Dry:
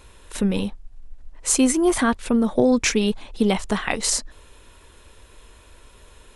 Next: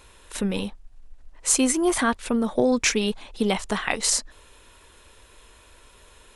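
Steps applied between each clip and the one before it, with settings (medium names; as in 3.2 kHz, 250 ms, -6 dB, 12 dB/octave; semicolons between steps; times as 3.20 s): bass shelf 400 Hz -6 dB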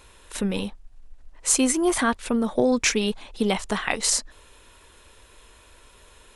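no audible change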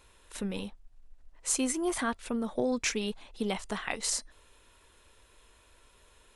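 feedback comb 680 Hz, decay 0.19 s, harmonics all, mix 30%; trim -6 dB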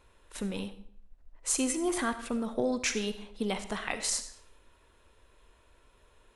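reverberation RT60 0.60 s, pre-delay 25 ms, DRR 10 dB; tape noise reduction on one side only decoder only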